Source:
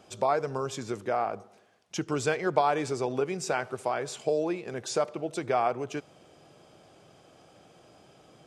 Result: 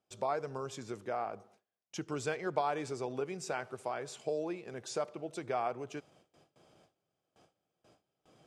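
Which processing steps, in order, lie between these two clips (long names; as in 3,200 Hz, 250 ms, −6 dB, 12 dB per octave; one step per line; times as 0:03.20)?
noise gate with hold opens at −45 dBFS
level −8 dB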